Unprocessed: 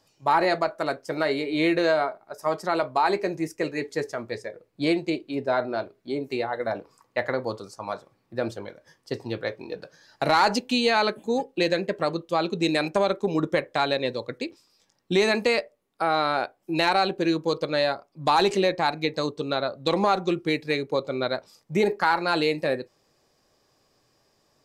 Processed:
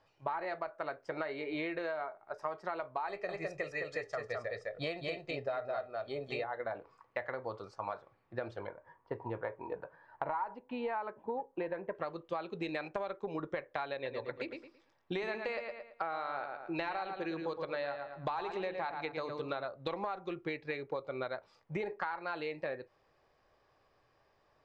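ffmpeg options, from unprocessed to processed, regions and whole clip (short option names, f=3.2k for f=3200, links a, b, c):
-filter_complex "[0:a]asettb=1/sr,asplit=3[a][b][c];[a]atrim=end=3.084[d];[b]atrim=start=3.08:end=6.44,asetpts=PTS-STARTPTS,afade=t=in:d=0.004:c=qsin,afade=t=out:st=3.356:d=0.004:c=qsin,equalizer=f=7.9k:w=0.57:g=8,aecho=1:1:1.6:0.61,atrim=end_sample=148176,aecho=1:1:208:0.668,atrim=end_sample=148176[e];[c]atrim=start=6.436[f];[d][e]acrossfade=d=0.004:c1=hsin:c2=qsin[g];[g][f]acrossfade=d=0.004:c1=qsin:c2=hsin,asettb=1/sr,asplit=3[h][i][j];[h]atrim=end=8.674[k];[i]atrim=start=8.67:end=11.95,asetpts=PTS-STARTPTS,afade=t=in:d=0.004:c=qsin,afade=t=out:st=3.276:d=0.004:c=qsin,lowpass=1.5k,equalizer=f=950:w=6.5:g=12.5[l];[j]atrim=start=11.946[m];[k][l]acrossfade=d=0.004:c1=hsin:c2=qsin[n];[n][m]acrossfade=d=0.004:c1=qsin:c2=hsin,asettb=1/sr,asplit=3[o][p][q];[o]atrim=end=13.944[r];[p]atrim=start=13.94:end=19.65,asetpts=PTS-STARTPTS,afade=t=in:d=0.004:c=qsin,afade=t=out:st=5.706:d=0.004:c=qsin,bandreject=f=50:t=h:w=6,bandreject=f=100:t=h:w=6,bandreject=f=150:t=h:w=6,bandreject=f=200:t=h:w=6,bandreject=f=250:t=h:w=6,bandreject=f=300:t=h:w=6,asplit=2[s][t];[t]adelay=111,lowpass=f=4.4k:p=1,volume=-7.5dB,asplit=2[u][v];[v]adelay=111,lowpass=f=4.4k:p=1,volume=0.29,asplit=2[w][x];[x]adelay=111,lowpass=f=4.4k:p=1,volume=0.29,asplit=2[y][z];[z]adelay=111,lowpass=f=4.4k:p=1,volume=0.29[aa];[s][u][w][y][aa]amix=inputs=5:normalize=0,atrim=end_sample=251811[ab];[q]atrim=start=19.646[ac];[r][ab]acrossfade=d=0.004:c1=hsin:c2=qsin[ad];[ad][ac]acrossfade=d=0.004:c1=qsin:c2=hsin,lowpass=2.1k,equalizer=f=220:w=0.67:g=-11.5,acompressor=threshold=-35dB:ratio=10,volume=1dB"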